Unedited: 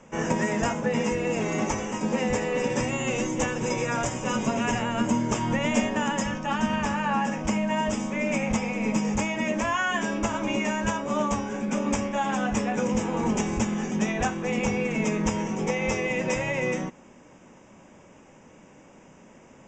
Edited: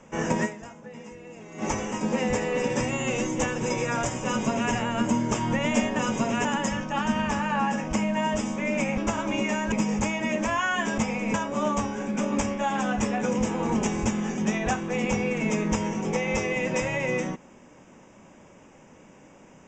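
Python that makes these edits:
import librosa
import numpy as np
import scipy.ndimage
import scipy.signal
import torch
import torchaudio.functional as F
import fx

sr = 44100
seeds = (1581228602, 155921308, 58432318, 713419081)

y = fx.edit(x, sr, fx.fade_down_up(start_s=0.45, length_s=1.2, db=-17.0, fade_s=0.4, curve='exp'),
    fx.duplicate(start_s=4.26, length_s=0.46, to_s=5.99),
    fx.swap(start_s=8.52, length_s=0.36, other_s=10.14, other_length_s=0.74), tone=tone)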